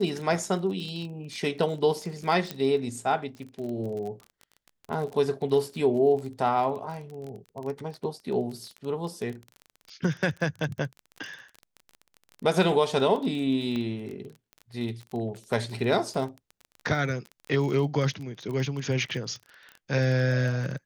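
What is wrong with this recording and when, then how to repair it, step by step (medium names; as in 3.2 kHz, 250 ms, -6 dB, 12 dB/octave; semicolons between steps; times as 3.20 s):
crackle 22 per s -33 dBFS
2.51 s: pop -16 dBFS
13.76 s: pop -21 dBFS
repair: de-click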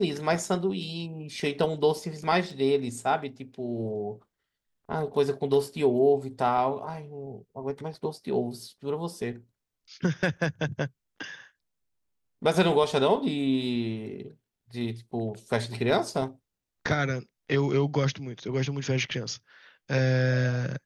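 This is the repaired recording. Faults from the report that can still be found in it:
2.51 s: pop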